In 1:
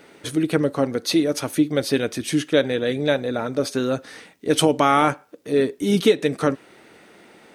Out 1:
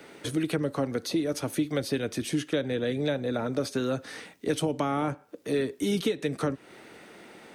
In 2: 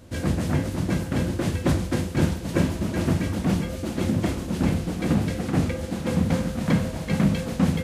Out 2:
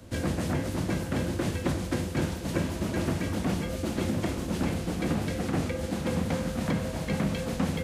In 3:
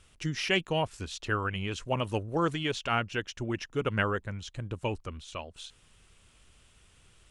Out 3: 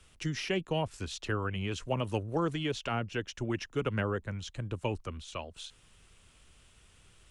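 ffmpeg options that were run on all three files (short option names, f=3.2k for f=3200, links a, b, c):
-filter_complex "[0:a]acrossover=split=100|310|720[a][b][c][d];[a]acompressor=threshold=-36dB:ratio=4[e];[b]acompressor=threshold=-32dB:ratio=4[f];[c]acompressor=threshold=-32dB:ratio=4[g];[d]acompressor=threshold=-36dB:ratio=4[h];[e][f][g][h]amix=inputs=4:normalize=0"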